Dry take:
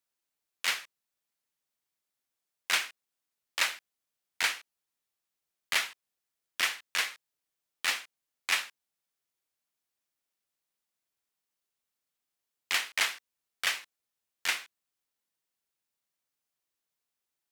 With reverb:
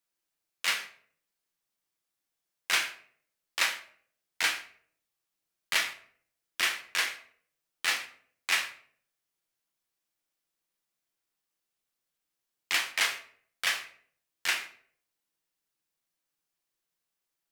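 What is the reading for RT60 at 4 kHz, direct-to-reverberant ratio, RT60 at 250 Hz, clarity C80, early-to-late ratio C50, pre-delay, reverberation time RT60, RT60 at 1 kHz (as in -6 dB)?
0.40 s, 4.0 dB, 0.65 s, 15.0 dB, 11.0 dB, 6 ms, 0.55 s, 0.50 s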